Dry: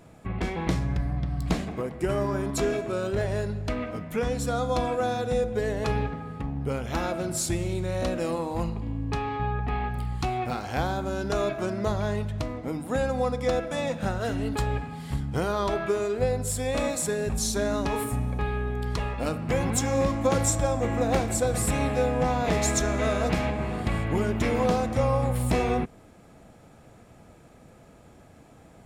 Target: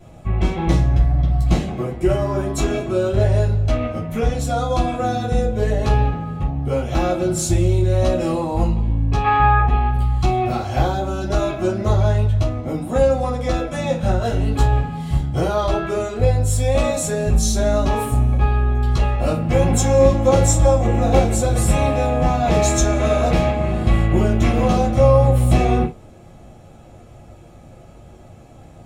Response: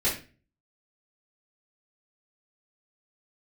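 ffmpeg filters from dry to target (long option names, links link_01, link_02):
-filter_complex "[0:a]asettb=1/sr,asplit=3[link_01][link_02][link_03];[link_01]atrim=end=9.244[link_04];[link_02]atrim=start=9.24:end=9.66,asetpts=PTS-STARTPTS,afade=type=in:duration=0.004:curve=qsin,afade=type=out:start_time=0.416:duration=0.004:curve=qsin,equalizer=frequency=1600:width_type=o:width=1.9:gain=14.5[link_05];[link_03]atrim=start=9.656[link_06];[link_04][link_05]acrossfade=duration=0.004:curve1=hsin:curve2=qsin[link_07];[link_07][link_06]acrossfade=duration=0.004:curve1=qsin:curve2=hsin[link_08];[1:a]atrim=start_sample=2205,afade=type=out:start_time=0.18:duration=0.01,atrim=end_sample=8379,asetrate=66150,aresample=44100[link_09];[link_08][link_09]afir=irnorm=-1:irlink=0,volume=-1.5dB"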